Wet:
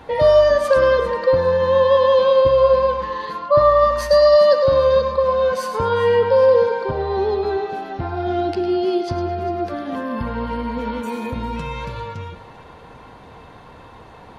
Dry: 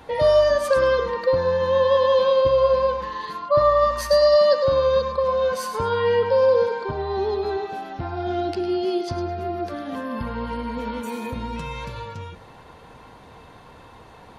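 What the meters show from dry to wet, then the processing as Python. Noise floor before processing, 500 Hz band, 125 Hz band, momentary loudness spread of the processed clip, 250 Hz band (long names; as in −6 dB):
−46 dBFS, +4.0 dB, +4.0 dB, 14 LU, +4.0 dB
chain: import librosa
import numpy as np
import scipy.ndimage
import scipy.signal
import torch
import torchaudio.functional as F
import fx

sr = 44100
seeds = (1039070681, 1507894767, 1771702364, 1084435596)

p1 = fx.high_shelf(x, sr, hz=4800.0, db=-7.5)
p2 = p1 + fx.echo_thinned(p1, sr, ms=399, feedback_pct=31, hz=420.0, wet_db=-16.0, dry=0)
y = p2 * 10.0 ** (4.0 / 20.0)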